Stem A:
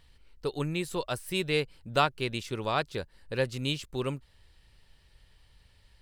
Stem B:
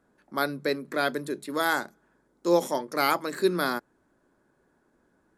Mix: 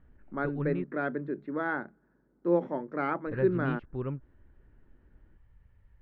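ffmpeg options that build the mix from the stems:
ffmpeg -i stem1.wav -i stem2.wav -filter_complex "[0:a]volume=1.5dB,asplit=3[link_01][link_02][link_03];[link_01]atrim=end=0.84,asetpts=PTS-STARTPTS,afade=type=out:start_time=0.836:duration=0.004:curve=hsin[link_04];[link_02]atrim=start=0.84:end=3.27,asetpts=PTS-STARTPTS,volume=0[link_05];[link_03]atrim=start=3.27,asetpts=PTS-STARTPTS,afade=type=in:duration=0.004:curve=hsin[link_06];[link_04][link_05][link_06]concat=n=3:v=0:a=1[link_07];[1:a]equalizer=frequency=1100:width=3.5:gain=-4.5,volume=2.5dB[link_08];[link_07][link_08]amix=inputs=2:normalize=0,lowpass=frequency=1600:width=0.5412,lowpass=frequency=1600:width=1.3066,equalizer=frequency=790:width=0.57:gain=-9" out.wav

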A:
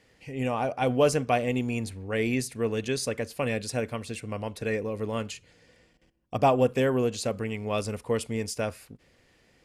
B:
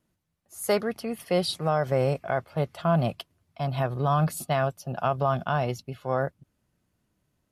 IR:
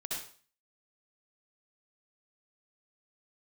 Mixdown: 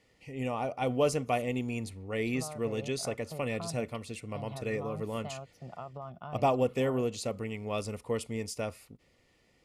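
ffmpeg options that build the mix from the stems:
-filter_complex "[0:a]volume=-5dB[link_01];[1:a]highshelf=frequency=3900:gain=-11.5,acompressor=threshold=-30dB:ratio=3,adelay=750,volume=-10.5dB,asplit=3[link_02][link_03][link_04];[link_02]atrim=end=1.42,asetpts=PTS-STARTPTS,afade=type=out:start_time=1.416:duration=0.004:curve=hsin[link_05];[link_03]atrim=start=1.42:end=2.27,asetpts=PTS-STARTPTS,volume=0[link_06];[link_04]atrim=start=2.27,asetpts=PTS-STARTPTS,afade=type=in:duration=0.004:curve=hsin[link_07];[link_05][link_06][link_07]concat=n=3:v=0:a=1[link_08];[link_01][link_08]amix=inputs=2:normalize=0,asuperstop=centerf=1600:order=4:qfactor=5.9"

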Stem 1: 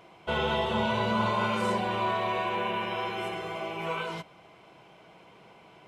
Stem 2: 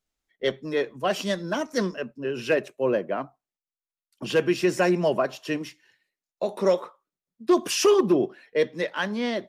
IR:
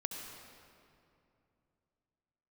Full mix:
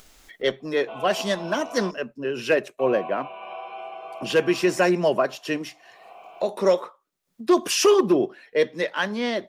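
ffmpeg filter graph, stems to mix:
-filter_complex "[0:a]asplit=3[link_01][link_02][link_03];[link_01]bandpass=frequency=730:width_type=q:width=8,volume=0dB[link_04];[link_02]bandpass=frequency=1090:width_type=q:width=8,volume=-6dB[link_05];[link_03]bandpass=frequency=2440:width_type=q:width=8,volume=-9dB[link_06];[link_04][link_05][link_06]amix=inputs=3:normalize=0,adelay=600,volume=2.5dB,asplit=3[link_07][link_08][link_09];[link_07]atrim=end=1.91,asetpts=PTS-STARTPTS,afade=type=out:start_time=1.906:duration=0.004:curve=hsin[link_10];[link_08]atrim=start=1.91:end=2.79,asetpts=PTS-STARTPTS,volume=0[link_11];[link_09]atrim=start=2.79,asetpts=PTS-STARTPTS,afade=type=in:duration=0.004:curve=hsin[link_12];[link_10][link_11][link_12]concat=n=3:v=0:a=1[link_13];[1:a]volume=3dB[link_14];[link_13][link_14]amix=inputs=2:normalize=0,equalizer=frequency=120:width_type=o:width=2.5:gain=-4.5,acompressor=mode=upward:threshold=-30dB:ratio=2.5"

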